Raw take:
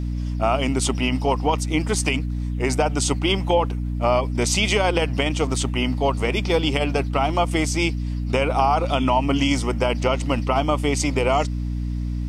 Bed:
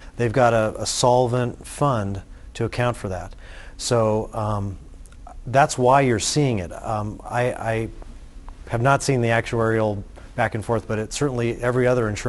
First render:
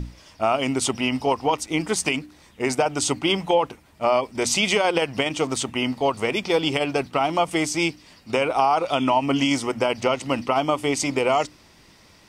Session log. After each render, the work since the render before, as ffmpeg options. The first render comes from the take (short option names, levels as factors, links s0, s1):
-af "bandreject=f=60:t=h:w=6,bandreject=f=120:t=h:w=6,bandreject=f=180:t=h:w=6,bandreject=f=240:t=h:w=6,bandreject=f=300:t=h:w=6"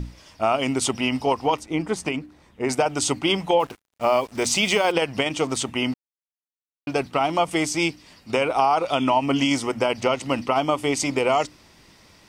-filter_complex "[0:a]asettb=1/sr,asplit=3[s0][s1][s2];[s0]atrim=end=1.594[s3];[s1]atrim=start=1.59:end=2.69,asetpts=PTS-STARTPTS,afade=t=in:d=0.004:c=qsin,afade=t=out:st=1.096:d=0.004:c=qsin,highshelf=f=2300:g=-11[s4];[s2]atrim=start=2.686[s5];[s3][s4]acrossfade=d=0.004:c1=hsin:c2=qsin[s6];[s6][s5]acrossfade=d=0.004:c1=qsin:c2=hsin,asettb=1/sr,asplit=3[s7][s8][s9];[s7]atrim=end=3.604[s10];[s8]atrim=start=3.6:end=4.92,asetpts=PTS-STARTPTS,afade=t=in:d=0.004:c=qsin,afade=t=out:st=1.316:d=0.004:c=qsin,acrusher=bits=6:mix=0:aa=0.5[s11];[s9]atrim=start=4.916[s12];[s10][s11]acrossfade=d=0.004:c1=hsin:c2=qsin[s13];[s13][s12]acrossfade=d=0.004:c1=qsin:c2=hsin,asplit=3[s14][s15][s16];[s14]atrim=end=5.94,asetpts=PTS-STARTPTS,afade=t=out:st=5.936:d=0.004:c=hsin[s17];[s15]atrim=start=5.94:end=6.87,asetpts=PTS-STARTPTS,volume=0[s18];[s16]atrim=start=6.87,asetpts=PTS-STARTPTS,afade=t=in:d=0.004:c=hsin[s19];[s17][s18][s19]concat=n=3:v=0:a=1"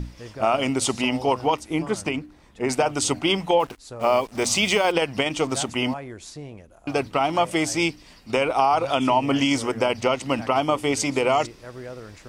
-filter_complex "[1:a]volume=0.119[s0];[0:a][s0]amix=inputs=2:normalize=0"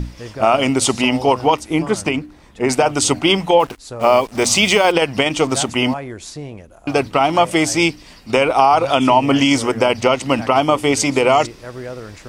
-af "volume=2.24,alimiter=limit=0.891:level=0:latency=1"